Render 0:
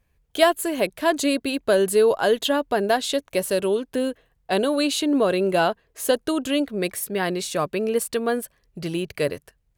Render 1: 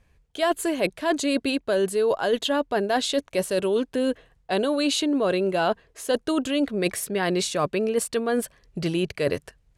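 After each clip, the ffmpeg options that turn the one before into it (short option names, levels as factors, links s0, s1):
-af "areverse,acompressor=threshold=0.0447:ratio=6,areverse,lowpass=8900,volume=2.11"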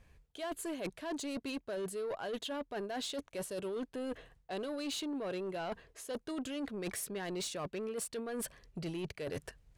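-af "areverse,acompressor=threshold=0.0251:ratio=10,areverse,asoftclip=type=tanh:threshold=0.0251,volume=0.891"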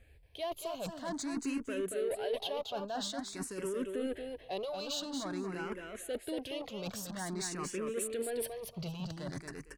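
-filter_complex "[0:a]asplit=2[s0][s1];[s1]aecho=0:1:230|460|690:0.562|0.101|0.0182[s2];[s0][s2]amix=inputs=2:normalize=0,asplit=2[s3][s4];[s4]afreqshift=0.49[s5];[s3][s5]amix=inputs=2:normalize=1,volume=1.5"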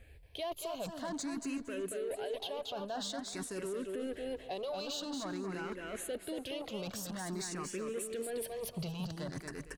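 -af "alimiter=level_in=3.55:limit=0.0631:level=0:latency=1:release=202,volume=0.282,aecho=1:1:372|744|1116|1488:0.1|0.049|0.024|0.0118,volume=1.58"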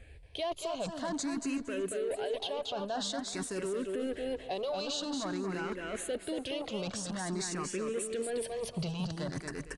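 -af "aresample=22050,aresample=44100,volume=1.58"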